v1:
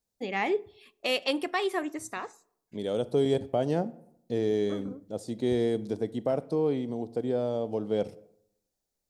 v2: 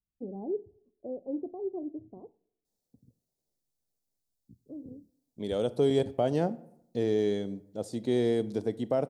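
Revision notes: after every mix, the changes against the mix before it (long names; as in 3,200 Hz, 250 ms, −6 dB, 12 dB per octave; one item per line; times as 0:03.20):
first voice: add Gaussian smoothing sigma 18 samples
second voice: entry +2.65 s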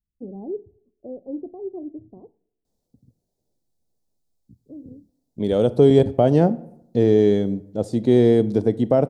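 second voice +8.5 dB
master: add spectral tilt −2 dB per octave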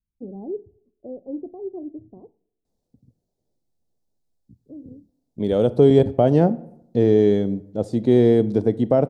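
master: add high-shelf EQ 4,600 Hz −6 dB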